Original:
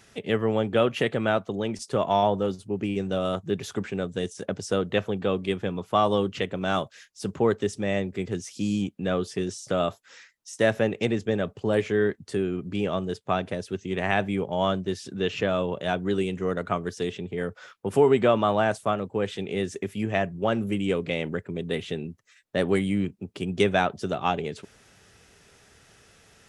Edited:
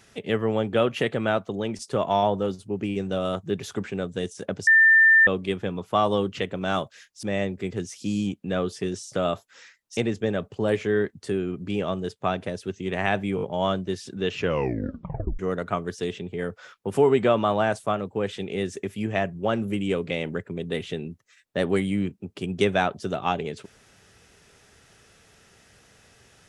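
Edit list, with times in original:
0:04.67–0:05.27: beep over 1,790 Hz −12 dBFS
0:07.23–0:07.78: remove
0:10.52–0:11.02: remove
0:14.41: stutter 0.02 s, 4 plays
0:15.36: tape stop 1.02 s

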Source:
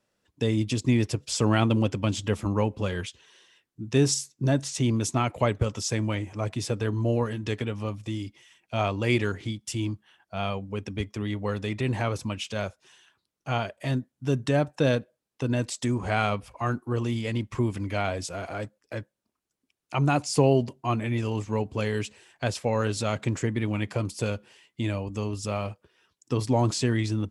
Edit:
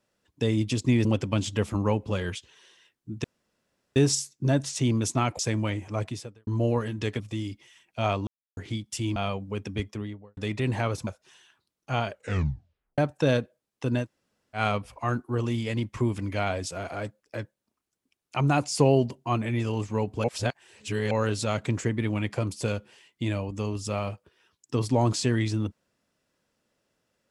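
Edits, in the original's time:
0:01.05–0:01.76: remove
0:03.95: splice in room tone 0.72 s
0:05.38–0:05.84: remove
0:06.50–0:06.92: fade out quadratic
0:07.65–0:07.95: remove
0:09.02–0:09.32: silence
0:09.91–0:10.37: remove
0:11.02–0:11.58: fade out and dull
0:12.28–0:12.65: remove
0:13.68: tape stop 0.88 s
0:15.61–0:16.16: fill with room tone, crossfade 0.10 s
0:21.82–0:22.69: reverse

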